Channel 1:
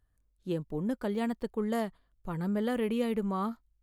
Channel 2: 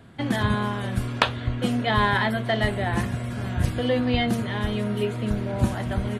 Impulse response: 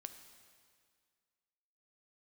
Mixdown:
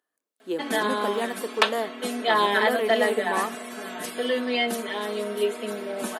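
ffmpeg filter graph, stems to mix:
-filter_complex "[0:a]volume=-0.5dB,asplit=2[a][b];[b]volume=-5.5dB[c];[1:a]highshelf=f=8.3k:g=10,aecho=1:1:4.6:0.96,adelay=400,volume=-7dB[d];[2:a]atrim=start_sample=2205[e];[c][e]afir=irnorm=-1:irlink=0[f];[a][d][f]amix=inputs=3:normalize=0,highpass=f=310:w=0.5412,highpass=f=310:w=1.3066,dynaudnorm=f=290:g=3:m=5dB"

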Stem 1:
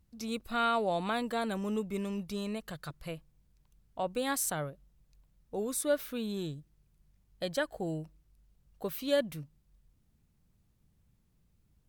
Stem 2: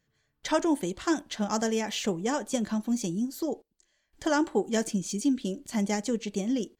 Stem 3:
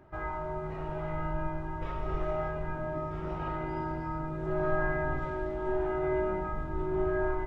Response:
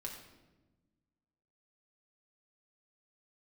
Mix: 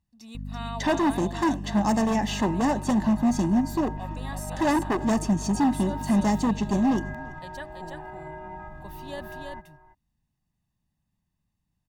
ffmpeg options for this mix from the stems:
-filter_complex "[0:a]highshelf=f=10k:g=-7,volume=-7.5dB,asplit=2[a][b];[b]volume=-3.5dB[c];[1:a]equalizer=f=320:w=0.42:g=13,aeval=exprs='val(0)+0.0398*(sin(2*PI*50*n/s)+sin(2*PI*2*50*n/s)/2+sin(2*PI*3*50*n/s)/3+sin(2*PI*4*50*n/s)/4+sin(2*PI*5*50*n/s)/5)':c=same,asoftclip=type=hard:threshold=-15.5dB,adelay=350,volume=-3dB,asplit=3[d][e][f];[e]volume=-17dB[g];[f]volume=-21.5dB[h];[2:a]aecho=1:1:1.2:0.3,alimiter=level_in=0.5dB:limit=-24dB:level=0:latency=1:release=55,volume=-0.5dB,adelay=2150,volume=-5.5dB,asplit=2[i][j];[j]volume=-15.5dB[k];[3:a]atrim=start_sample=2205[l];[g][l]afir=irnorm=-1:irlink=0[m];[c][h][k]amix=inputs=3:normalize=0,aecho=0:1:333:1[n];[a][d][i][m][n]amix=inputs=5:normalize=0,lowshelf=f=100:g=-11,aecho=1:1:1.1:0.67"

